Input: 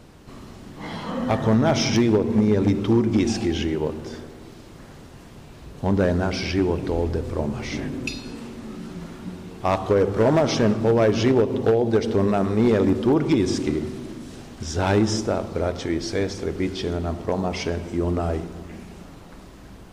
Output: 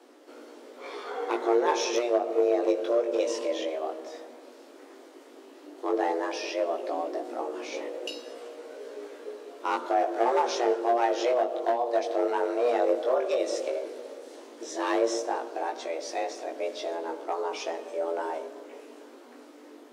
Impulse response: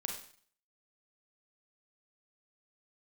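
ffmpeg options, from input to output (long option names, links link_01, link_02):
-af "flanger=delay=16.5:depth=4.5:speed=0.12,afreqshift=240,volume=-4dB"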